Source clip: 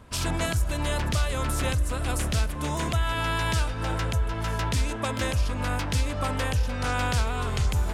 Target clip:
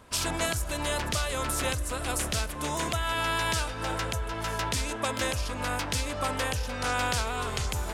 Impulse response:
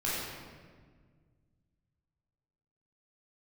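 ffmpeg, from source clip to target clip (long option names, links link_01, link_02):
-af "bass=frequency=250:gain=-8,treble=frequency=4000:gain=3"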